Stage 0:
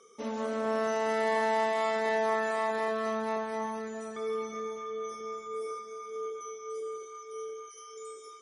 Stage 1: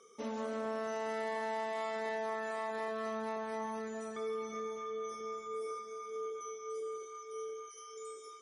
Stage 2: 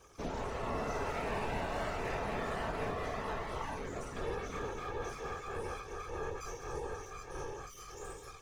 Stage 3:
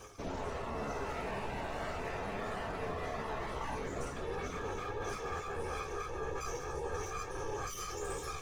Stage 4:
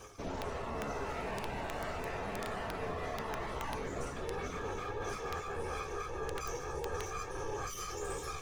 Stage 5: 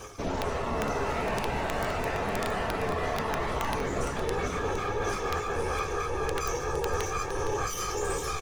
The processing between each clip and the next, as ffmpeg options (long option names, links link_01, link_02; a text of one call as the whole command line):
ffmpeg -i in.wav -af "acompressor=threshold=-33dB:ratio=3,volume=-2.5dB" out.wav
ffmpeg -i in.wav -af "aeval=exprs='max(val(0),0)':channel_layout=same,afftfilt=real='hypot(re,im)*cos(2*PI*random(0))':imag='hypot(re,im)*sin(2*PI*random(1))':win_size=512:overlap=0.75,volume=10.5dB" out.wav
ffmpeg -i in.wav -af "areverse,acompressor=threshold=-45dB:ratio=12,areverse,flanger=delay=9.2:depth=6.9:regen=52:speed=0.4:shape=triangular,volume=14dB" out.wav
ffmpeg -i in.wav -af "aeval=exprs='(mod(23.7*val(0)+1,2)-1)/23.7':channel_layout=same" out.wav
ffmpeg -i in.wav -af "aecho=1:1:462:0.316,volume=8.5dB" out.wav